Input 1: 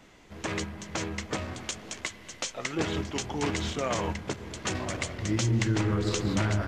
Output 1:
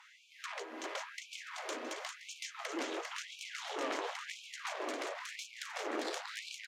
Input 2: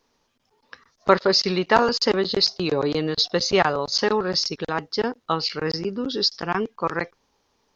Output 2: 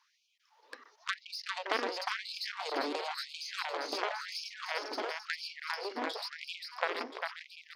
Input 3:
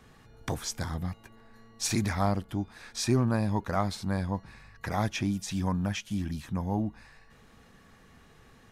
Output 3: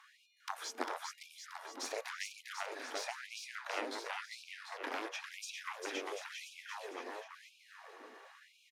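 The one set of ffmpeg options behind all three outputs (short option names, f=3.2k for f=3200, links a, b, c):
-filter_complex "[0:a]aemphasis=mode=reproduction:type=cd,bandreject=f=7.9k:w=26,asubboost=boost=5.5:cutoff=79,acrossover=split=200|1200[a][b][c];[a]acompressor=threshold=-35dB:ratio=4[d];[b]acompressor=threshold=-37dB:ratio=4[e];[c]acompressor=threshold=-44dB:ratio=4[f];[d][e][f]amix=inputs=3:normalize=0,aeval=exprs='0.178*(cos(1*acos(clip(val(0)/0.178,-1,1)))-cos(1*PI/2))+0.0398*(cos(4*acos(clip(val(0)/0.178,-1,1)))-cos(4*PI/2))+0.0562*(cos(7*acos(clip(val(0)/0.178,-1,1)))-cos(7*PI/2))':c=same,aecho=1:1:400|740|1029|1275|1483:0.631|0.398|0.251|0.158|0.1,afftfilt=real='re*gte(b*sr/1024,230*pow(2300/230,0.5+0.5*sin(2*PI*0.96*pts/sr)))':imag='im*gte(b*sr/1024,230*pow(2300/230,0.5+0.5*sin(2*PI*0.96*pts/sr)))':win_size=1024:overlap=0.75"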